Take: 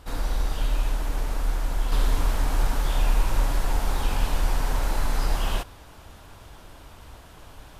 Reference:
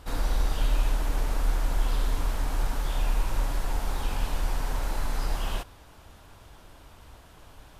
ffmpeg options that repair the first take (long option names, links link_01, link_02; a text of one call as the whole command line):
ffmpeg -i in.wav -af "asetnsamples=nb_out_samples=441:pad=0,asendcmd='1.92 volume volume -4.5dB',volume=0dB" out.wav